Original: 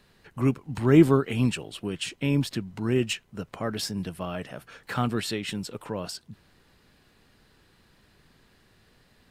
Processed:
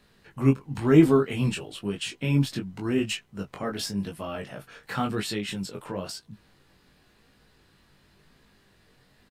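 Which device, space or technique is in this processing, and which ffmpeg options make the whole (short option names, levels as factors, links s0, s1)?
double-tracked vocal: -filter_complex "[0:a]asplit=2[s0][s1];[s1]adelay=15,volume=0.251[s2];[s0][s2]amix=inputs=2:normalize=0,flanger=delay=19:depth=2.9:speed=0.95,volume=1.33"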